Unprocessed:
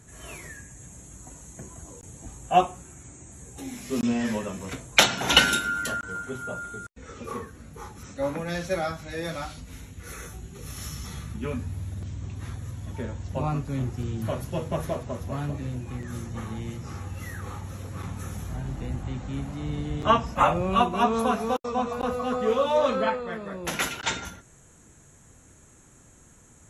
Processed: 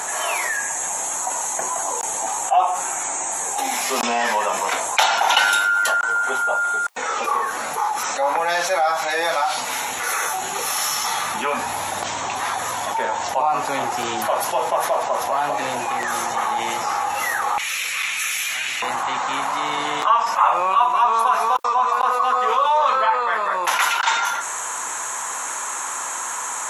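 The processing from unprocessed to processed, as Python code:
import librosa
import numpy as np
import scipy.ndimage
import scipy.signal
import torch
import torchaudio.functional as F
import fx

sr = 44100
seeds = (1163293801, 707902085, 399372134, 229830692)

y = fx.highpass_res(x, sr, hz=fx.steps((0.0, 830.0), (17.58, 2400.0), (18.82, 980.0)), q=3.8)
y = fx.env_flatten(y, sr, amount_pct=70)
y = y * librosa.db_to_amplitude(-6.0)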